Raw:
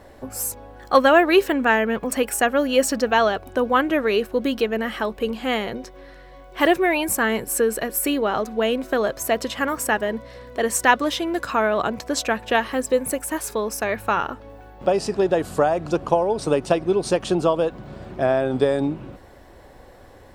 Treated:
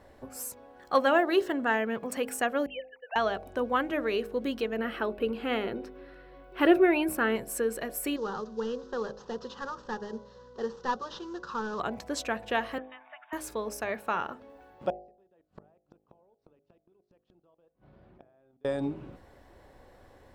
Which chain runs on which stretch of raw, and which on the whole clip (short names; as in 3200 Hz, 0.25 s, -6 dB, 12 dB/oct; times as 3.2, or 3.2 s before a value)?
1.17–1.74 median filter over 3 samples + notch 2400 Hz, Q 5.1
2.66–3.16 sine-wave speech + Chebyshev high-pass 690 Hz, order 4 + expander -46 dBFS
4.78–7.36 bell 6900 Hz -10.5 dB 0.65 oct + small resonant body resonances 350/1400/2600 Hz, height 9 dB, ringing for 20 ms
8.16–11.8 CVSD 32 kbps + fixed phaser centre 440 Hz, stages 8
12.78–13.33 brick-wall FIR band-pass 610–3800 Hz + air absorption 250 m
14.9–18.65 level quantiser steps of 24 dB + flipped gate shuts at -26 dBFS, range -31 dB + air absorption 190 m
whole clip: high shelf 5600 Hz -4 dB; de-hum 51.7 Hz, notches 16; gain -8.5 dB